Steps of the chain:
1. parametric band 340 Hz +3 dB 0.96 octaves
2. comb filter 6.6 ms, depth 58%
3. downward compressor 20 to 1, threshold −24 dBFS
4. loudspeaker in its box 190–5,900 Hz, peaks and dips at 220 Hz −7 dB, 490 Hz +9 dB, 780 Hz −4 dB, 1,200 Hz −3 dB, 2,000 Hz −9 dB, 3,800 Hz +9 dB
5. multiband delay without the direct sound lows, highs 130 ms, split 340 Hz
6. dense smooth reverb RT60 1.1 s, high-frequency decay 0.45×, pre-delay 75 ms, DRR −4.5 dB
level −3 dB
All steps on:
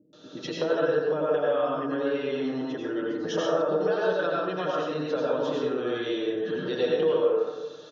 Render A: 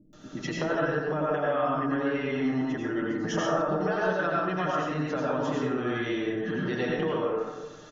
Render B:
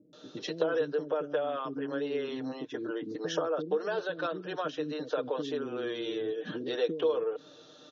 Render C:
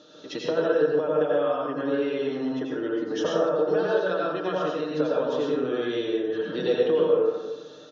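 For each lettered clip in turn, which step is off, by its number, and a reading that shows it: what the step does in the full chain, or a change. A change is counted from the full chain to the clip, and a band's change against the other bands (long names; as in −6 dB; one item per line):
4, change in integrated loudness −1.5 LU
6, echo-to-direct ratio 26.0 dB to 20.5 dB
5, echo-to-direct ratio 26.0 dB to 4.5 dB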